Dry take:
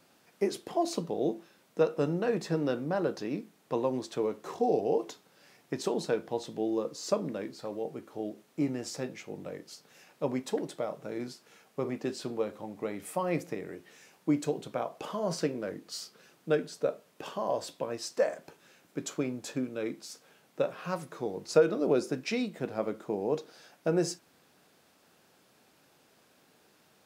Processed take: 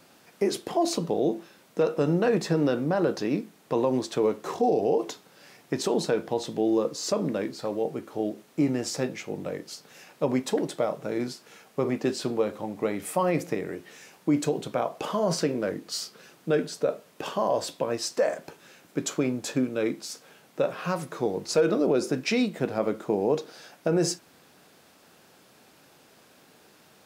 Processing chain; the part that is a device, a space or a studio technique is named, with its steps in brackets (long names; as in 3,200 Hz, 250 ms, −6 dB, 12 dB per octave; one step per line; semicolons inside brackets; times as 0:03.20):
clipper into limiter (hard clipping −15 dBFS, distortion −28 dB; brickwall limiter −22 dBFS, peak gain reduction 7 dB)
level +7.5 dB